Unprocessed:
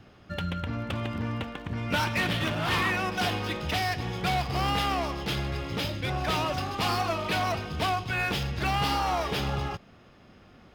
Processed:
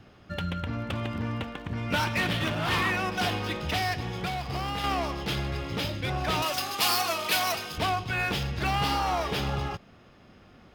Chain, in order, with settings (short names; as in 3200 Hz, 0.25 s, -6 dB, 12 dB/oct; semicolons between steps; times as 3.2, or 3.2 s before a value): 3.99–4.84 compressor, threshold -28 dBFS, peak gain reduction 6 dB; 6.42–7.78 RIAA curve recording